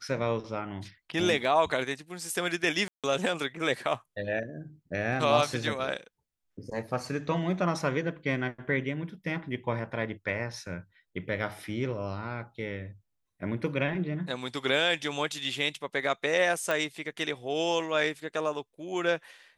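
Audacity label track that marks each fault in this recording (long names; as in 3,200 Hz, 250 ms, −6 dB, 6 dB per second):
2.880000	3.040000	drop-out 157 ms
16.710000	16.710000	click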